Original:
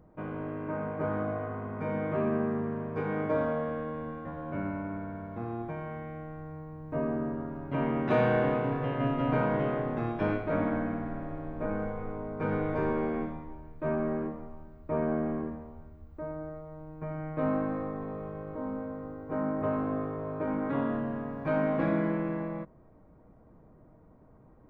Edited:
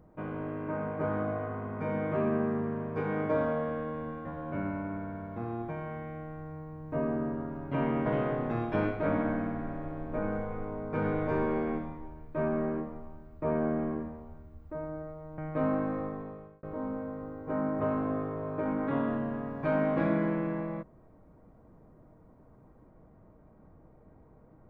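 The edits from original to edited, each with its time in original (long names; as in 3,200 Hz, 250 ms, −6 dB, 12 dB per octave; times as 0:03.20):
0:08.06–0:09.53: remove
0:16.85–0:17.20: remove
0:17.87–0:18.45: fade out linear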